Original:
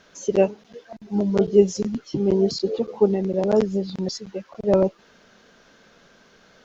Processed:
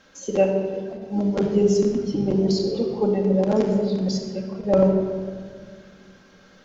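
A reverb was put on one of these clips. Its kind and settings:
rectangular room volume 3,000 cubic metres, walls mixed, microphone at 2.2 metres
level −2.5 dB

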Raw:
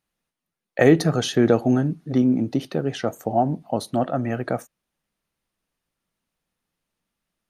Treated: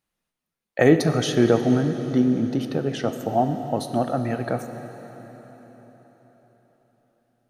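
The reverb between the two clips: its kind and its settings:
dense smooth reverb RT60 4.6 s, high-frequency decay 0.85×, DRR 7.5 dB
level −1 dB

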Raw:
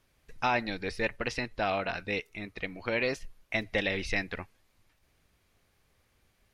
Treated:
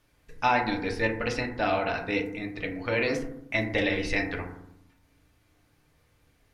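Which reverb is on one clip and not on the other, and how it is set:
feedback delay network reverb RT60 0.76 s, low-frequency decay 1.55×, high-frequency decay 0.3×, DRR 1 dB
level +1 dB

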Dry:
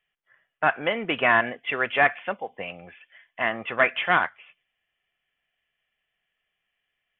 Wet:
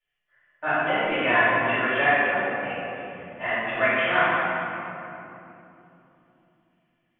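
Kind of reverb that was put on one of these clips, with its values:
rectangular room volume 140 cubic metres, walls hard, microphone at 2.6 metres
level −14.5 dB

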